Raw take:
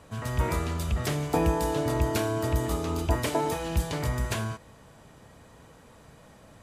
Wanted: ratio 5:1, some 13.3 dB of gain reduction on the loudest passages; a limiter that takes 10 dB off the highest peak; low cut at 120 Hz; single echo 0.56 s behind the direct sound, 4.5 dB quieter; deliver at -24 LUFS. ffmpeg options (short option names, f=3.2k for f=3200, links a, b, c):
-af "highpass=120,acompressor=threshold=-39dB:ratio=5,alimiter=level_in=12dB:limit=-24dB:level=0:latency=1,volume=-12dB,aecho=1:1:560:0.596,volume=21dB"